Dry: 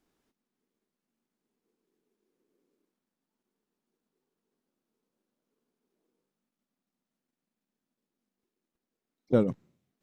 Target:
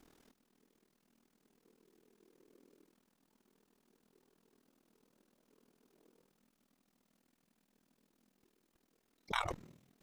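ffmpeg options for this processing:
ffmpeg -i in.wav -af "afftfilt=real='re*lt(hypot(re,im),0.0398)':imag='im*lt(hypot(re,im),0.0398)':win_size=1024:overlap=0.75,tremolo=f=40:d=0.857,volume=14.5dB" out.wav

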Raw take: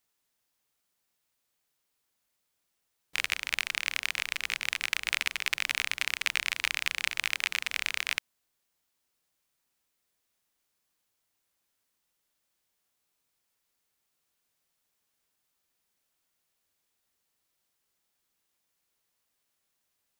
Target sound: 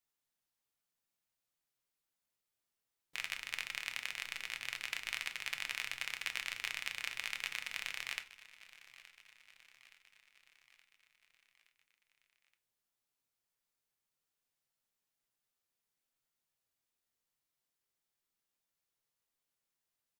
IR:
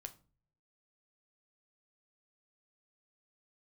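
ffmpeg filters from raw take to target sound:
-filter_complex "[0:a]aecho=1:1:871|1742|2613|3484|4355:0.119|0.0689|0.04|0.0232|0.0134[link_01];[1:a]atrim=start_sample=2205,asetrate=52920,aresample=44100[link_02];[link_01][link_02]afir=irnorm=-1:irlink=0,volume=-3dB"

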